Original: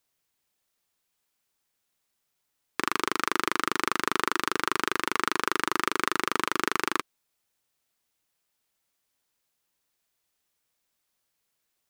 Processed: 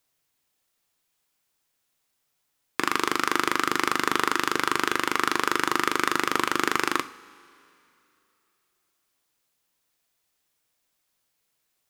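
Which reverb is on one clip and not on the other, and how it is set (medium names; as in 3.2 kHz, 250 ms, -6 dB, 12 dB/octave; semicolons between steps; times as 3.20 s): two-slope reverb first 0.4 s, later 2.9 s, from -18 dB, DRR 10 dB; trim +2.5 dB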